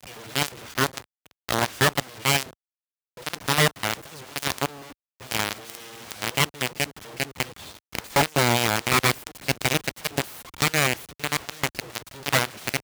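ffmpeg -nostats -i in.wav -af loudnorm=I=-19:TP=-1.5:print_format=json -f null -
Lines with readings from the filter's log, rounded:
"input_i" : "-25.3",
"input_tp" : "-8.0",
"input_lra" : "4.7",
"input_thresh" : "-35.8",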